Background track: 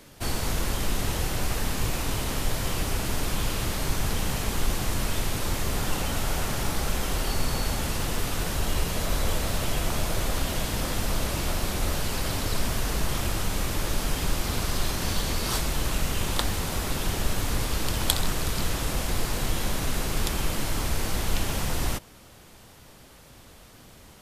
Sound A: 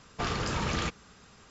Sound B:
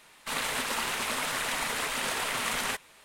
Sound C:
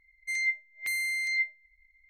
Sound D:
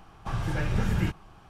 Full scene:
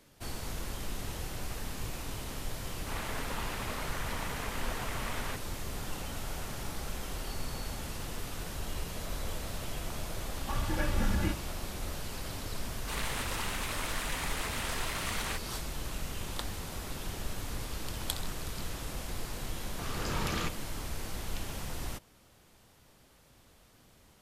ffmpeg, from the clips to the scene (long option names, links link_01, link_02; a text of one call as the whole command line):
ffmpeg -i bed.wav -i cue0.wav -i cue1.wav -i cue2.wav -i cue3.wav -filter_complex "[2:a]asplit=2[link_01][link_02];[0:a]volume=-11dB[link_03];[link_01]lowpass=frequency=1400:poles=1[link_04];[4:a]aecho=1:1:3.5:0.92[link_05];[1:a]dynaudnorm=framelen=140:gausssize=5:maxgain=13dB[link_06];[link_04]atrim=end=3.04,asetpts=PTS-STARTPTS,volume=-5dB,afade=type=in:duration=0.004:curve=hsin,afade=type=out:start_time=3.036:duration=0.004:curve=hsin,adelay=2600[link_07];[link_05]atrim=end=1.49,asetpts=PTS-STARTPTS,volume=-5dB,afade=type=in:duration=0.004:curve=hsin,afade=type=out:start_time=1.486:duration=0.004:curve=hsin,adelay=10220[link_08];[link_02]atrim=end=3.04,asetpts=PTS-STARTPTS,volume=-6.5dB,afade=type=in:duration=0.004:curve=hsin,afade=type=out:start_time=3.036:duration=0.004:curve=hsin,adelay=12610[link_09];[link_06]atrim=end=1.5,asetpts=PTS-STARTPTS,volume=-16dB,afade=type=in:duration=0.004:curve=hsin,afade=type=out:start_time=1.496:duration=0.004:curve=hsin,adelay=19590[link_10];[link_03][link_07][link_08][link_09][link_10]amix=inputs=5:normalize=0" out.wav